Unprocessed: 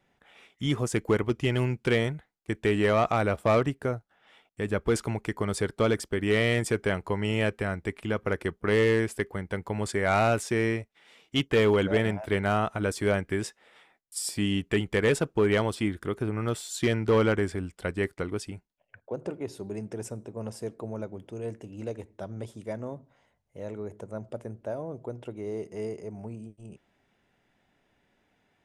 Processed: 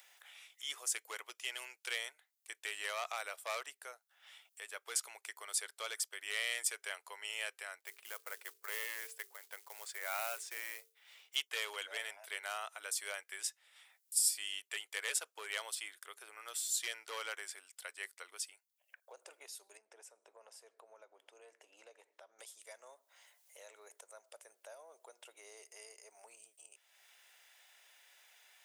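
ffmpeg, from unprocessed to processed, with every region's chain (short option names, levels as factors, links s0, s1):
-filter_complex "[0:a]asettb=1/sr,asplit=3[s0][s1][s2];[s0]atrim=end=7.804[s3];[s1]atrim=start=7.8:end=11.36,asetpts=PTS-STARTPTS,afade=t=in:d=0.004:c=qsin,afade=t=out:st=3.556:d=0.004:c=qsin,aemphasis=mode=reproduction:type=75kf,bandreject=f=50:t=h:w=6,bandreject=f=100:t=h:w=6,bandreject=f=150:t=h:w=6,bandreject=f=200:t=h:w=6,bandreject=f=250:t=h:w=6,bandreject=f=300:t=h:w=6,bandreject=f=350:t=h:w=6,bandreject=f=400:t=h:w=6,bandreject=f=450:t=h:w=6,acrusher=bits=6:mode=log:mix=0:aa=0.000001[s4];[s2]atrim=start=11.356[s5];[s3][s4]acrossfade=d=0.004:c1=hsin:c2=qsin[s6];[s6][s5]acrossfade=d=0.004:c1=qsin:c2=hsin,asettb=1/sr,asplit=3[s7][s8][s9];[s7]atrim=end=19.774[s10];[s8]atrim=start=19.77:end=22.39,asetpts=PTS-STARTPTS,afade=t=in:d=0.004:c=qsin,afade=t=out:st=2.616:d=0.004:c=qsin,lowpass=f=1200:p=1,acompressor=threshold=0.00355:ratio=1.5:attack=3.2:release=140:knee=1:detection=peak[s11];[s9]atrim=start=22.386[s12];[s10][s11]acrossfade=d=0.004:c1=hsin:c2=qsin[s13];[s13][s12]acrossfade=d=0.004:c1=qsin:c2=hsin,highpass=f=520:w=0.5412,highpass=f=520:w=1.3066,aderivative,acompressor=mode=upward:threshold=0.00282:ratio=2.5,volume=1.26"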